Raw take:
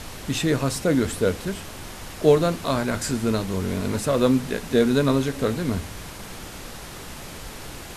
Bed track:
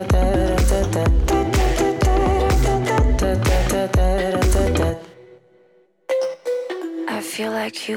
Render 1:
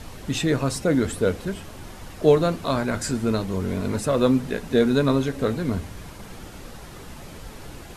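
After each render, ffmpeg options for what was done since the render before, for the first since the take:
ffmpeg -i in.wav -af "afftdn=noise_reduction=7:noise_floor=-38" out.wav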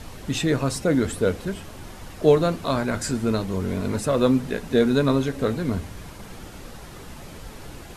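ffmpeg -i in.wav -af anull out.wav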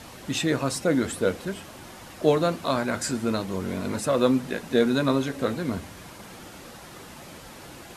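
ffmpeg -i in.wav -af "highpass=frequency=220:poles=1,bandreject=frequency=430:width=12" out.wav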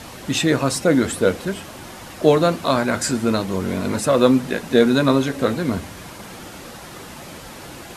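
ffmpeg -i in.wav -af "volume=6.5dB,alimiter=limit=-1dB:level=0:latency=1" out.wav

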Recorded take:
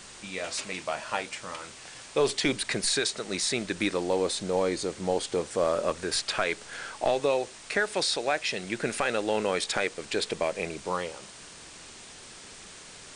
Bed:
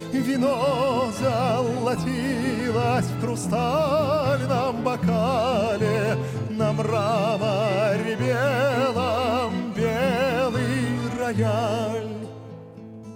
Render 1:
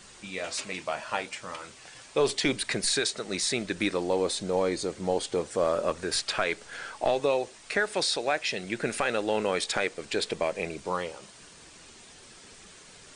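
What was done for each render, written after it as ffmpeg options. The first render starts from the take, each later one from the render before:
ffmpeg -i in.wav -af "afftdn=noise_reduction=6:noise_floor=-47" out.wav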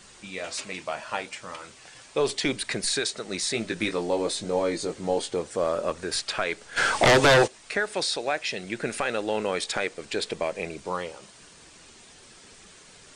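ffmpeg -i in.wav -filter_complex "[0:a]asettb=1/sr,asplit=3[link_01][link_02][link_03];[link_01]atrim=end=3.524[link_04];[link_02]atrim=start=3.52:end=5.3,asetpts=PTS-STARTPTS,afade=type=in:duration=0.004:curve=qsin,afade=type=out:start_time=1.776:duration=0.004:curve=qsin,asplit=2[link_05][link_06];[link_06]adelay=18,volume=-5dB[link_07];[link_05][link_07]amix=inputs=2:normalize=0,atrim=end_sample=78498[link_08];[link_03]atrim=start=5.296[link_09];[link_04][link_08]acrossfade=duration=0.004:curve1=hsin:curve2=qsin[link_10];[link_10][link_09]acrossfade=duration=0.004:curve1=qsin:curve2=hsin,asplit=3[link_11][link_12][link_13];[link_11]afade=type=out:start_time=6.76:duration=0.02[link_14];[link_12]aeval=exprs='0.224*sin(PI/2*4.47*val(0)/0.224)':channel_layout=same,afade=type=in:start_time=6.76:duration=0.02,afade=type=out:start_time=7.46:duration=0.02[link_15];[link_13]afade=type=in:start_time=7.46:duration=0.02[link_16];[link_14][link_15][link_16]amix=inputs=3:normalize=0" out.wav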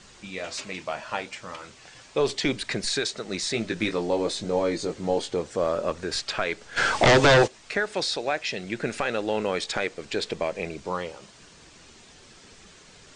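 ffmpeg -i in.wav -af "lowpass=frequency=7600:width=0.5412,lowpass=frequency=7600:width=1.3066,lowshelf=frequency=240:gain=4" out.wav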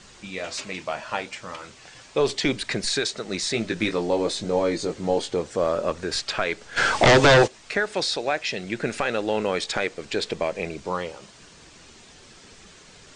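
ffmpeg -i in.wav -af "volume=2dB" out.wav

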